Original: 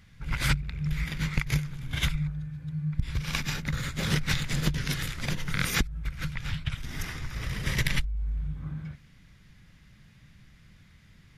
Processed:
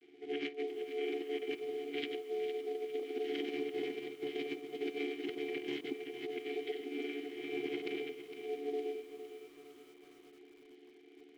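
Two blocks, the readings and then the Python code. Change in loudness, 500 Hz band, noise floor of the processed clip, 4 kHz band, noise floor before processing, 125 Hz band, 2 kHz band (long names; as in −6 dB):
−9.0 dB, +10.0 dB, −59 dBFS, −12.0 dB, −56 dBFS, −37.5 dB, −13.0 dB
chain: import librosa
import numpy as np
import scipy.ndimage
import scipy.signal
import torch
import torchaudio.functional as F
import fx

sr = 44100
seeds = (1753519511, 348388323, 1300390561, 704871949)

y = fx.chord_vocoder(x, sr, chord='bare fifth', root=50)
y = fx.quant_companded(y, sr, bits=6)
y = fx.low_shelf(y, sr, hz=320.0, db=7.0)
y = y * np.sin(2.0 * np.pi * 580.0 * np.arange(len(y)) / sr)
y = fx.vowel_filter(y, sr, vowel='i')
y = y + 10.0 ** (-10.0 / 20.0) * np.pad(y, (int(94 * sr / 1000.0), 0))[:len(y)]
y = fx.over_compress(y, sr, threshold_db=-52.0, ratio=-0.5)
y = fx.highpass(y, sr, hz=160.0, slope=6)
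y = fx.echo_crushed(y, sr, ms=459, feedback_pct=55, bits=12, wet_db=-10.5)
y = y * 10.0 ** (15.0 / 20.0)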